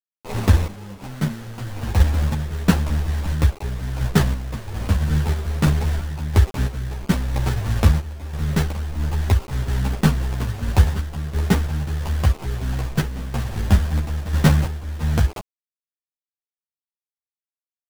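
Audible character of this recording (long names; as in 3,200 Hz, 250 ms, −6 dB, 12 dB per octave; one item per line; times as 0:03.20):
a quantiser's noise floor 6 bits, dither none
sample-and-hold tremolo 3 Hz, depth 80%
aliases and images of a low sample rate 1,700 Hz, jitter 20%
a shimmering, thickened sound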